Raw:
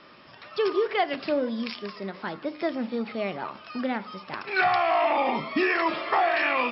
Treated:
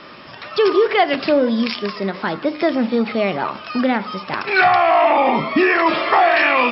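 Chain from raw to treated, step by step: 4.68–5.86 s: treble shelf 4 kHz -8.5 dB; in parallel at 0 dB: peak limiter -22 dBFS, peak gain reduction 10.5 dB; on the sum: trim +6 dB

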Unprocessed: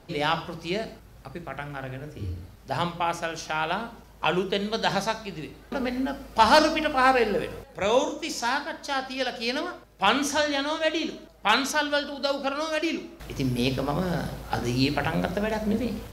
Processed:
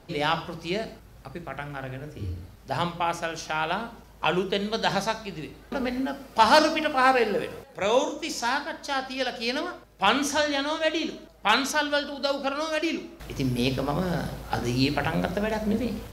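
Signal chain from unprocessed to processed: 6.00–8.14 s: high-pass 130 Hz 6 dB/octave

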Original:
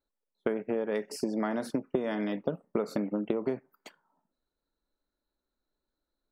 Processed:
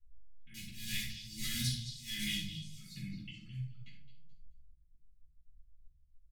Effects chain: 0.54–2.67 s: block-companded coder 5-bit; level-controlled noise filter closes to 410 Hz, open at -27.5 dBFS; inverse Chebyshev band-stop 380–1000 Hz, stop band 70 dB; treble shelf 4.7 kHz -4.5 dB; comb 2.4 ms, depth 49%; compression 12:1, threshold -53 dBFS, peak gain reduction 13 dB; slow attack 298 ms; repeats whose band climbs or falls 215 ms, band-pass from 4 kHz, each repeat 0.7 oct, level -8.5 dB; simulated room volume 710 m³, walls furnished, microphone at 9.7 m; trim +11 dB

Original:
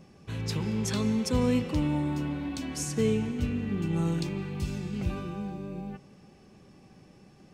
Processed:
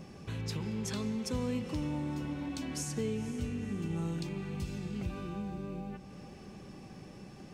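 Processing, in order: compression 2:1, threshold -49 dBFS, peak gain reduction 15 dB; echo that smears into a reverb 496 ms, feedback 49%, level -14.5 dB; trim +5.5 dB

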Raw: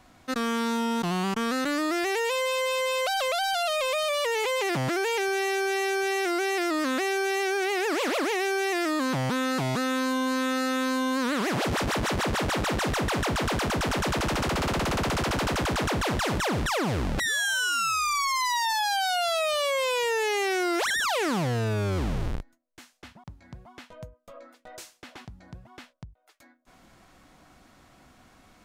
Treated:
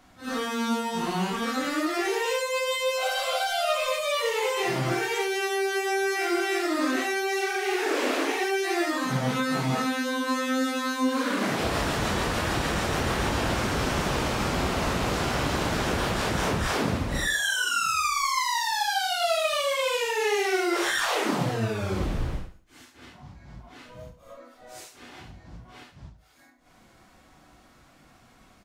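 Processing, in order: phase randomisation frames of 200 ms; feedback delay 72 ms, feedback 36%, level -13 dB

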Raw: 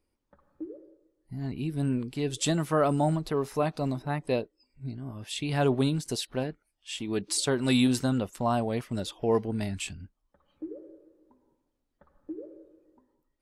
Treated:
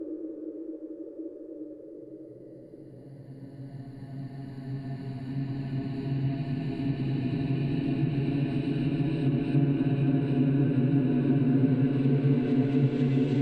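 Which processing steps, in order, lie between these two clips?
Paulstretch 10×, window 1.00 s, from 0.73 s; low-pass that closes with the level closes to 2.3 kHz, closed at -26 dBFS; trim +5 dB

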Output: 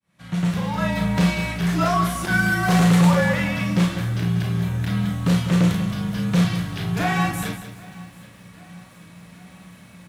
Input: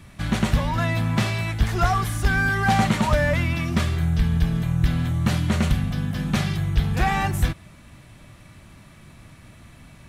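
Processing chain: fade-in on the opening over 0.97 s; 2.31–3.11 s: treble shelf 7.3 kHz +8 dB; feedback delay 786 ms, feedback 57%, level -23.5 dB; frequency shift -48 Hz; peaking EQ 180 Hz +15 dB 0.2 oct; overload inside the chain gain 13.5 dB; high-pass 140 Hz 12 dB/octave; early reflections 35 ms -5 dB, 51 ms -8 dB; bit-crushed delay 190 ms, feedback 35%, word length 8-bit, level -11 dB

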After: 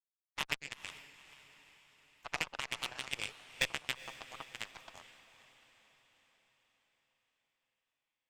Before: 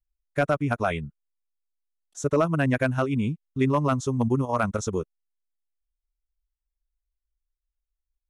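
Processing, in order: band-stop 1.4 kHz, Q 6.9; spectral gate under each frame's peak -25 dB weak; high-pass 440 Hz 24 dB/octave; loudest bins only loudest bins 64; 2.77–3.63 s: transient shaper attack +1 dB, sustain +8 dB; Chebyshev shaper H 2 -12 dB, 3 -13 dB, 5 -19 dB, 7 -18 dB, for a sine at -25.5 dBFS; echo that smears into a reverb 462 ms, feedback 55%, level -15 dB; trim +13.5 dB

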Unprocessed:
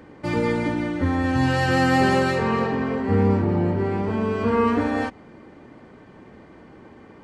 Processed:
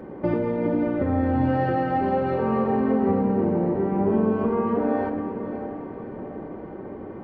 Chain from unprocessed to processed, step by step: peaking EQ 490 Hz +8 dB 2.3 oct; compression 10:1, threshold -22 dBFS, peak gain reduction 13.5 dB; tape spacing loss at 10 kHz 43 dB; echo that smears into a reverb 541 ms, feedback 52%, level -10 dB; simulated room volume 1700 m³, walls mixed, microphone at 1.1 m; trim +3 dB

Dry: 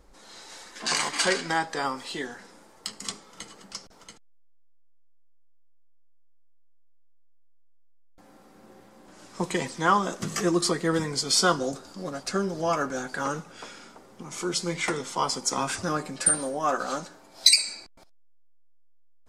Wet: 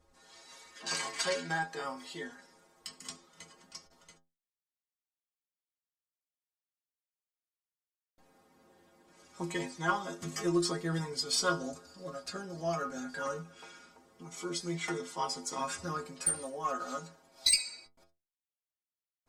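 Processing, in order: inharmonic resonator 81 Hz, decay 0.33 s, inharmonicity 0.008; Chebyshev shaper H 4 -28 dB, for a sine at -12 dBFS

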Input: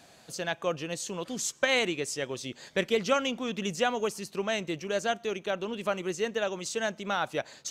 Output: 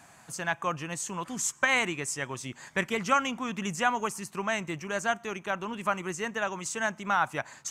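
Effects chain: graphic EQ 125/500/1000/2000/4000/8000 Hz +4/-9/+9/+4/-10/+6 dB

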